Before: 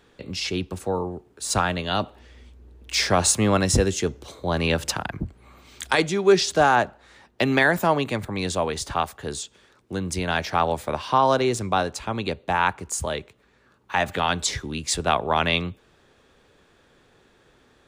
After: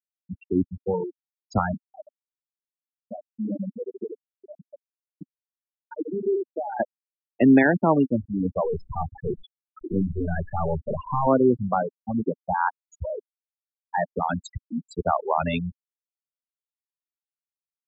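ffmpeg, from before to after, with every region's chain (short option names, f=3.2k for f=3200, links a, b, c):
-filter_complex "[0:a]asettb=1/sr,asplit=3[a][b][c];[a]atrim=end=1.744[d];[b]atrim=start=1.74:end=6.8,asetpts=PTS-STARTPTS,afade=t=in:d=0.004:c=qsin,afade=t=out:st=5.056:d=0.004:c=qsin,aecho=1:1:74|148|222:0.473|0.118|0.0296,atrim=end_sample=223146,acompressor=threshold=-28dB:ratio=2.5:attack=3.2:release=140:knee=1:detection=peak,highpass=f=170:w=0.5412,highpass=f=170:w=1.3066[e];[c]atrim=start=6.796[f];[d][e]acrossfade=d=0.004:c1=hsin:c2=qsin[g];[g][f]acrossfade=d=0.004:c1=qsin:c2=hsin,asettb=1/sr,asplit=3[h][i][j];[h]atrim=end=8.654[k];[i]atrim=start=8.65:end=11.27,asetpts=PTS-STARTPTS,afade=t=in:d=0.004:c=qsin,afade=t=out:st=2.616:d=0.004:c=qsin,aeval=exprs='val(0)+0.5*0.0944*sgn(val(0))':c=same,bandreject=f=60:t=h:w=6,bandreject=f=120:t=h:w=6,bandreject=f=180:t=h:w=6,bandreject=f=240:t=h:w=6,aeval=exprs='(tanh(7.94*val(0)+0.6)-tanh(0.6))/7.94':c=same[l];[j]atrim=start=11.266[m];[k][l]acrossfade=d=0.004:c1=hsin:c2=qsin[n];[n][m]acrossfade=d=0.004:c1=qsin:c2=hsin,afftfilt=real='re*gte(hypot(re,im),0.224)':imag='im*gte(hypot(re,im),0.224)':win_size=1024:overlap=0.75,lowpass=f=1.6k:p=1,equalizer=f=260:w=1.7:g=10"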